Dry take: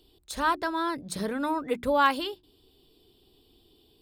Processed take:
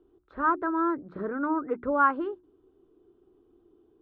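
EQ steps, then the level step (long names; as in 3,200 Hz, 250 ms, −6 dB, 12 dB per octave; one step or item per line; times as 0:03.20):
transistor ladder low-pass 1,500 Hz, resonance 65%
parametric band 350 Hz +13 dB 0.76 octaves
notch filter 880 Hz, Q 29
+3.5 dB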